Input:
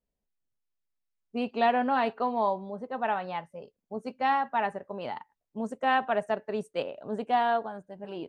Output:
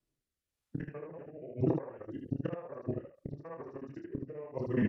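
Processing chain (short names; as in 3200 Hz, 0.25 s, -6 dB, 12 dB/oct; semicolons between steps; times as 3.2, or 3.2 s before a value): local time reversal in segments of 80 ms; HPF 84 Hz 6 dB/oct; in parallel at +2 dB: vocal rider within 4 dB 0.5 s; on the sum: pitch shift -8 st; flipped gate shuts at -18 dBFS, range -25 dB; time stretch by phase-locked vocoder 0.59×; rotary speaker horn 1 Hz; on a send: early reflections 29 ms -6.5 dB, 76 ms -4.5 dB; on the sum: gain +1.5 dB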